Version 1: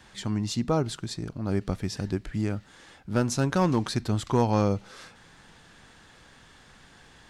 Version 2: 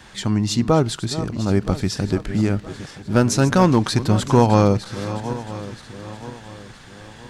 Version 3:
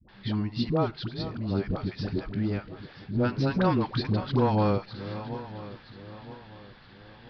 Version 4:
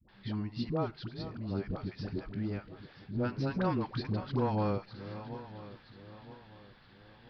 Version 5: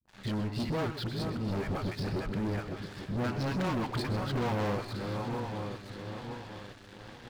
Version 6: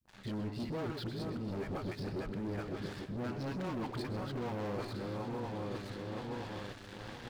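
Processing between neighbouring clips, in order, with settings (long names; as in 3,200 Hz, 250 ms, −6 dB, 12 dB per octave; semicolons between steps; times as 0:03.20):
feedback delay that plays each chunk backwards 485 ms, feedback 62%, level −13 dB; level +8.5 dB
Butterworth low-pass 4,900 Hz 72 dB per octave; all-pass dispersion highs, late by 88 ms, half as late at 520 Hz; level −9 dB
dynamic equaliser 3,600 Hz, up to −4 dB, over −55 dBFS, Q 3; level −7 dB
leveller curve on the samples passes 5; multi-tap delay 126/133/849 ms −13.5/−17/−14 dB; level −8.5 dB
dynamic equaliser 350 Hz, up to +5 dB, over −46 dBFS, Q 0.75; reversed playback; downward compressor 6 to 1, threshold −39 dBFS, peak gain reduction 13 dB; reversed playback; level +2 dB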